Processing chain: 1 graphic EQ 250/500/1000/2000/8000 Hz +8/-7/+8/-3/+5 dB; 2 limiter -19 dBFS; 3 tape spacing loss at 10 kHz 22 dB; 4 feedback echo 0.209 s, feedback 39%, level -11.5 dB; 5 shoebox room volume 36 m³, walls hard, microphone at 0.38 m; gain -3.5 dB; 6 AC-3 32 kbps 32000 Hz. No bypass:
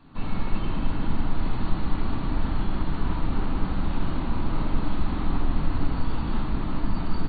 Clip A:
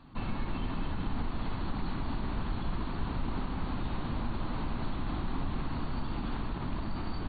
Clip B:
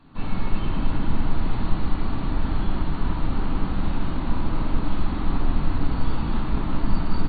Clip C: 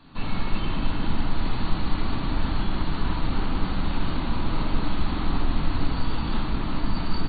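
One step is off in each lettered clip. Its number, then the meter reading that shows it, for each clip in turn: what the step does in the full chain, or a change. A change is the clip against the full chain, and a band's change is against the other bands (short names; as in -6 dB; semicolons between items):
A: 5, crest factor change -1.5 dB; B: 2, mean gain reduction 1.5 dB; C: 3, 4 kHz band +6.5 dB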